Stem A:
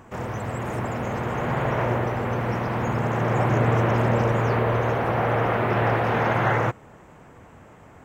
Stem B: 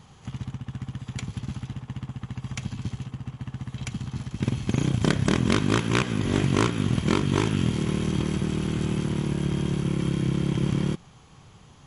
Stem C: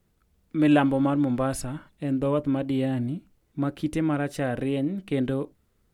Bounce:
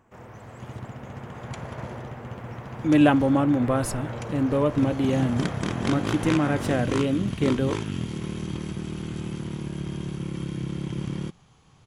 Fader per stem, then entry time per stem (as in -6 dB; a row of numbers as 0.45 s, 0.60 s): -14.0 dB, -6.0 dB, +2.0 dB; 0.00 s, 0.35 s, 2.30 s